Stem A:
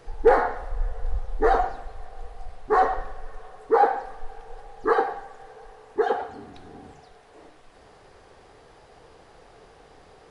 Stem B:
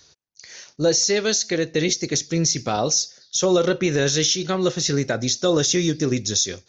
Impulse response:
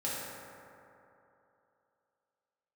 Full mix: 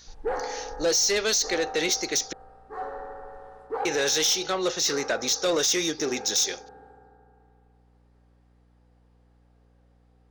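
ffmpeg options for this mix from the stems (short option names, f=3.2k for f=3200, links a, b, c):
-filter_complex "[0:a]agate=range=-10dB:threshold=-44dB:ratio=16:detection=peak,volume=-13dB,asplit=2[a][b];[b]volume=-8dB[c];[1:a]highpass=490,volume=2dB,asplit=3[d][e][f];[d]atrim=end=2.33,asetpts=PTS-STARTPTS,afade=t=out:st=2.326:d=0.004:c=hsin[g];[e]atrim=start=2.33:end=3.85,asetpts=PTS-STARTPTS,volume=0[h];[f]atrim=start=3.85,asetpts=PTS-STARTPTS,afade=t=in:d=0.004:c=hsin[i];[g][h][i]concat=n=3:v=0:a=1,asplit=2[j][k];[k]apad=whole_len=454595[l];[a][l]sidechaincompress=threshold=-38dB:ratio=8:attack=16:release=1000[m];[2:a]atrim=start_sample=2205[n];[c][n]afir=irnorm=-1:irlink=0[o];[m][j][o]amix=inputs=3:normalize=0,asoftclip=type=tanh:threshold=-18.5dB,aeval=exprs='val(0)+0.00112*(sin(2*PI*60*n/s)+sin(2*PI*2*60*n/s)/2+sin(2*PI*3*60*n/s)/3+sin(2*PI*4*60*n/s)/4+sin(2*PI*5*60*n/s)/5)':c=same"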